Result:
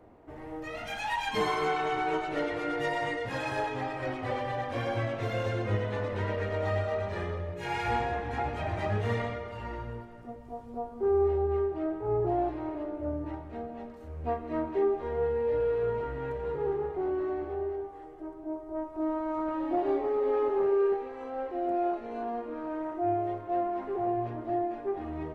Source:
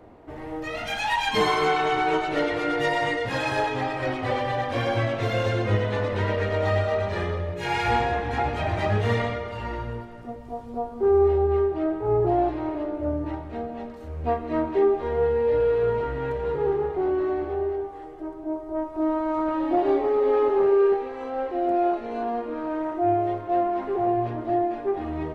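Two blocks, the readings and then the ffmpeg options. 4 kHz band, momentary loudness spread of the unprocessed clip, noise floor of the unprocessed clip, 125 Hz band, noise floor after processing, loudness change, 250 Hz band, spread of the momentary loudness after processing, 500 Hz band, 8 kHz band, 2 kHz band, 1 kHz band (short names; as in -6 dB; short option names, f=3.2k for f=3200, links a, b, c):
-9.0 dB, 11 LU, -39 dBFS, -6.5 dB, -45 dBFS, -6.5 dB, -6.5 dB, 11 LU, -6.5 dB, n/a, -7.5 dB, -6.5 dB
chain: -af "equalizer=f=3.9k:t=o:w=1.1:g=-3.5,volume=-6.5dB"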